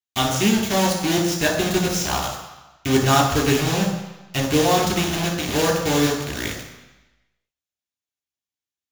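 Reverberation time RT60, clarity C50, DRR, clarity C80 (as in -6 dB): 1.0 s, 4.5 dB, -1.0 dB, 7.0 dB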